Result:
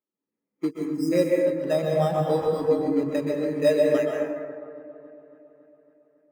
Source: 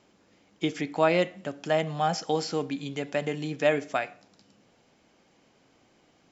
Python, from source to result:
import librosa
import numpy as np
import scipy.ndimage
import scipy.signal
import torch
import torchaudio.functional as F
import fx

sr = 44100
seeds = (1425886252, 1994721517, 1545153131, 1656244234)

p1 = fx.law_mismatch(x, sr, coded='A')
p2 = scipy.signal.sosfilt(scipy.signal.butter(2, 140.0, 'highpass', fs=sr, output='sos'), p1)
p3 = np.clip(p2, -10.0 ** (-28.0 / 20.0), 10.0 ** (-28.0 / 20.0))
p4 = p2 + F.gain(torch.from_numpy(p3), -9.5).numpy()
p5 = fx.notch_comb(p4, sr, f0_hz=720.0)
p6 = fx.sample_hold(p5, sr, seeds[0], rate_hz=4400.0, jitter_pct=0)
p7 = fx.brickwall_bandstop(p6, sr, low_hz=460.0, high_hz=4800.0, at=(0.7, 1.11), fade=0.02)
p8 = fx.echo_wet_lowpass(p7, sr, ms=277, feedback_pct=73, hz=1700.0, wet_db=-12.0)
p9 = fx.rev_plate(p8, sr, seeds[1], rt60_s=2.4, hf_ratio=0.4, predelay_ms=110, drr_db=-2.0)
p10 = fx.spectral_expand(p9, sr, expansion=1.5)
y = F.gain(torch.from_numpy(p10), 1.0).numpy()